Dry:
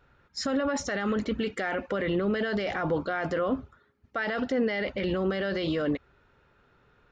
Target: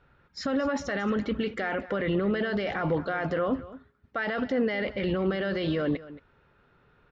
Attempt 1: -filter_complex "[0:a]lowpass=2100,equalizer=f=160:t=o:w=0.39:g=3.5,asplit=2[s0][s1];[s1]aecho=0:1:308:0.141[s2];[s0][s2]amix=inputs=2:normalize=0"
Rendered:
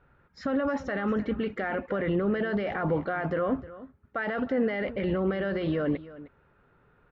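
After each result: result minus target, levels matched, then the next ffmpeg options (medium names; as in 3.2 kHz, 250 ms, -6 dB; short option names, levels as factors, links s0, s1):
echo 85 ms late; 4 kHz band -6.5 dB
-filter_complex "[0:a]lowpass=2100,equalizer=f=160:t=o:w=0.39:g=3.5,asplit=2[s0][s1];[s1]aecho=0:1:223:0.141[s2];[s0][s2]amix=inputs=2:normalize=0"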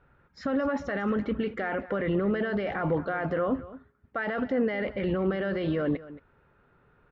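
4 kHz band -7.0 dB
-filter_complex "[0:a]lowpass=4400,equalizer=f=160:t=o:w=0.39:g=3.5,asplit=2[s0][s1];[s1]aecho=0:1:223:0.141[s2];[s0][s2]amix=inputs=2:normalize=0"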